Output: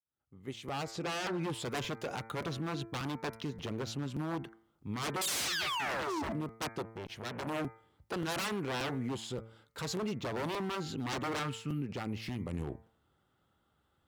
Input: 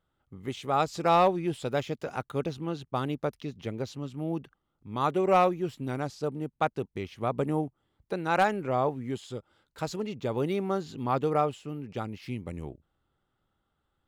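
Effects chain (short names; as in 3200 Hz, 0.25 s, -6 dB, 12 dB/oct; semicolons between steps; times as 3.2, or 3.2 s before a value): opening faded in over 1.74 s; 5.21–6.33 painted sound fall 210–4300 Hz -27 dBFS; 11.39–11.82 band shelf 590 Hz -12 dB; wavefolder -29 dBFS; HPF 56 Hz 24 dB/oct; de-hum 112.4 Hz, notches 21; limiter -32 dBFS, peak gain reduction 7.5 dB; 0.91–1.41 high shelf 8100 Hz -10 dB; crackling interface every 0.58 s, samples 256, repeat, from 0.68; 6.82–7.47 core saturation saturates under 710 Hz; gain +4 dB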